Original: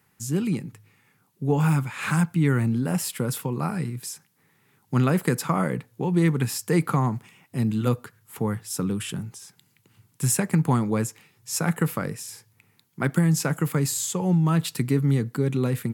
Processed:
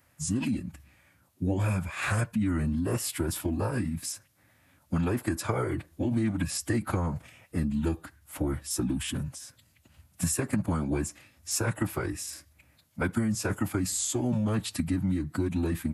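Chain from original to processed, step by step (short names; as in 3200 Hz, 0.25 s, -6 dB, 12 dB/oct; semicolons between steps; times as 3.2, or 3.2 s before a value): formant-preserving pitch shift -7 st; compressor 4:1, threshold -27 dBFS, peak gain reduction 9.5 dB; gain +1.5 dB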